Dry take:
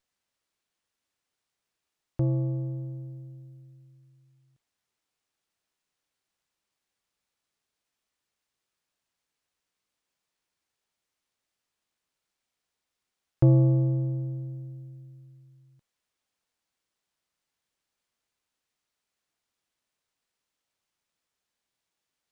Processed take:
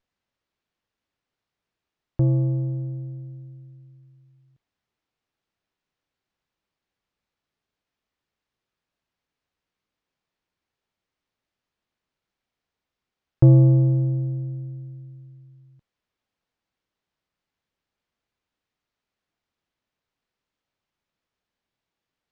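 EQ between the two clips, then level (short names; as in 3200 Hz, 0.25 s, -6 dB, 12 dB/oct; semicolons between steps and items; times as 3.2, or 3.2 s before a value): air absorption 130 m; low shelf 350 Hz +5.5 dB; +1.5 dB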